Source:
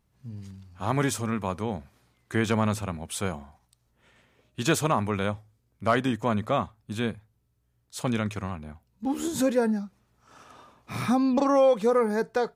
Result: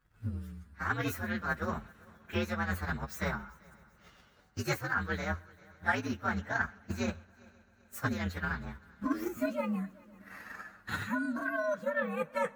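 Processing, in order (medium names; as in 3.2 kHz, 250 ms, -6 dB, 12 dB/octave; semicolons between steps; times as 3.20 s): frequency axis rescaled in octaves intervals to 123%; peaking EQ 1.5 kHz +12.5 dB 0.85 oct; reverse; compression 6:1, threshold -33 dBFS, peak gain reduction 17.5 dB; reverse; multi-head delay 130 ms, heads first and third, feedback 60%, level -23.5 dB; transient shaper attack +8 dB, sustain -1 dB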